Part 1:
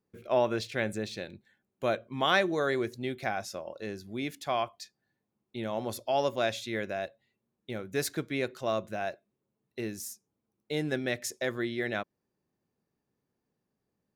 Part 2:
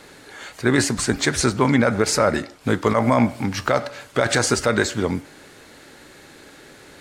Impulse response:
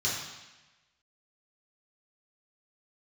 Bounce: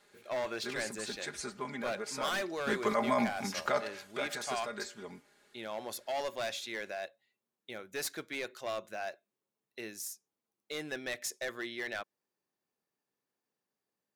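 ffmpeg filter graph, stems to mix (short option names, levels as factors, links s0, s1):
-filter_complex "[0:a]highpass=f=880:p=1,asoftclip=type=hard:threshold=0.0299,volume=0.944[s0];[1:a]lowshelf=f=290:g=-10,aecho=1:1:4.9:0.75,volume=0.266,afade=t=in:st=2.39:d=0.26:silence=0.334965,afade=t=out:st=3.87:d=0.52:silence=0.298538[s1];[s0][s1]amix=inputs=2:normalize=0"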